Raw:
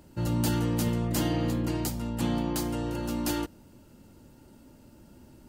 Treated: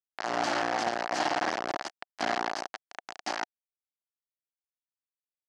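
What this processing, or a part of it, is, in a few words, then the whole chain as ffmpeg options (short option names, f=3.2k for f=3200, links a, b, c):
hand-held game console: -af "acrusher=bits=3:mix=0:aa=0.000001,highpass=430,equalizer=f=470:t=q:w=4:g=-8,equalizer=f=730:t=q:w=4:g=8,equalizer=f=1.7k:t=q:w=4:g=4,equalizer=f=2.5k:t=q:w=4:g=-4,equalizer=f=3.6k:t=q:w=4:g=-7,lowpass=f=5.4k:w=0.5412,lowpass=f=5.4k:w=1.3066"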